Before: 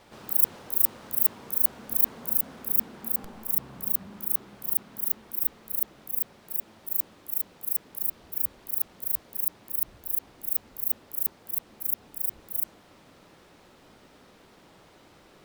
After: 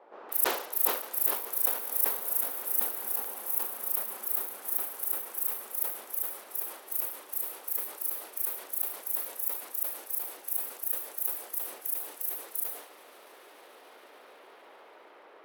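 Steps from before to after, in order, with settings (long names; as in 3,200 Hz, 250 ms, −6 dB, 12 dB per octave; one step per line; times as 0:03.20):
high-pass filter 400 Hz 24 dB per octave
echo that builds up and dies away 144 ms, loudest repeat 8, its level −17 dB
in parallel at −2 dB: downward compressor, threshold −34 dBFS, peak gain reduction 18 dB
on the sum: low-pass that shuts in the quiet parts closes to 860 Hz, open at −24.5 dBFS
level that may fall only so fast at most 91 dB per second
level −1.5 dB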